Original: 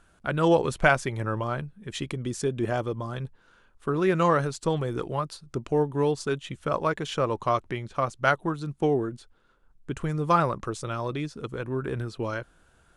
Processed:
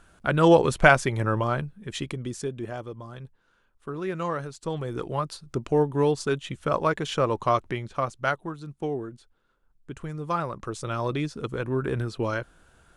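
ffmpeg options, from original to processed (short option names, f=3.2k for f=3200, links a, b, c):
-af "volume=22.5dB,afade=t=out:st=1.45:d=1.24:silence=0.266073,afade=t=in:st=4.56:d=0.78:silence=0.334965,afade=t=out:st=7.66:d=0.82:silence=0.398107,afade=t=in:st=10.48:d=0.58:silence=0.354813"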